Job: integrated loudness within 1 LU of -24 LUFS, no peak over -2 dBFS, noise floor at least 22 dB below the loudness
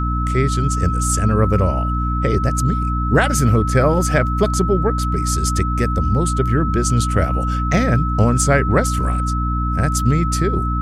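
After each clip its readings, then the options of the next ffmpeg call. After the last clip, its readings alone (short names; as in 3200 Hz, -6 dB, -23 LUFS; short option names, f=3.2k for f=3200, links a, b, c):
hum 60 Hz; harmonics up to 300 Hz; hum level -18 dBFS; steady tone 1300 Hz; tone level -23 dBFS; loudness -18.0 LUFS; peak -3.0 dBFS; loudness target -24.0 LUFS
-> -af "bandreject=f=60:t=h:w=4,bandreject=f=120:t=h:w=4,bandreject=f=180:t=h:w=4,bandreject=f=240:t=h:w=4,bandreject=f=300:t=h:w=4"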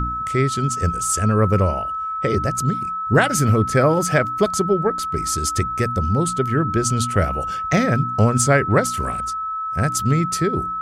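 hum none; steady tone 1300 Hz; tone level -23 dBFS
-> -af "bandreject=f=1.3k:w=30"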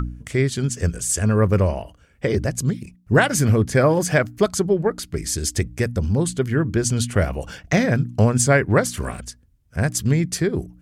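steady tone none; loudness -20.5 LUFS; peak -4.5 dBFS; loudness target -24.0 LUFS
-> -af "volume=-3.5dB"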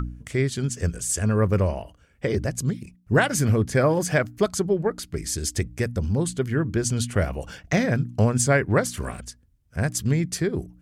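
loudness -24.0 LUFS; peak -8.0 dBFS; noise floor -59 dBFS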